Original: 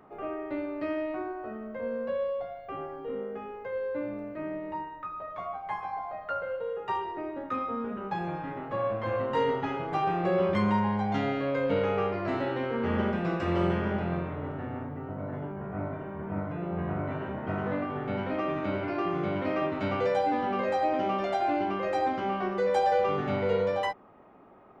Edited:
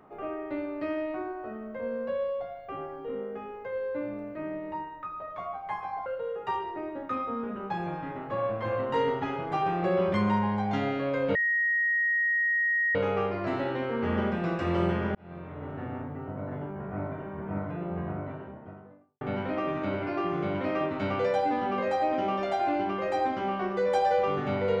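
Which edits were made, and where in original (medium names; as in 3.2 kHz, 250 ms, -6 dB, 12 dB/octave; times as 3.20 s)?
6.06–6.47 s: delete
11.76 s: add tone 1.88 kHz -23 dBFS 1.60 s
13.96–14.67 s: fade in linear
16.42–18.02 s: studio fade out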